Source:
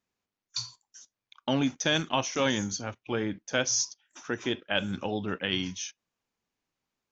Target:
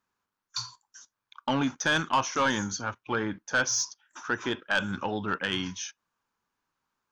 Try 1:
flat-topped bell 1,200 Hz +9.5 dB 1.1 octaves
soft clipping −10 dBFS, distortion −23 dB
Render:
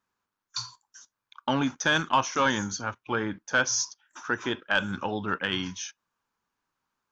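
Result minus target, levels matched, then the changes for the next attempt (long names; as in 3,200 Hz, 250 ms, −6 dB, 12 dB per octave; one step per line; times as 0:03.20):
soft clipping: distortion −9 dB
change: soft clipping −16.5 dBFS, distortion −14 dB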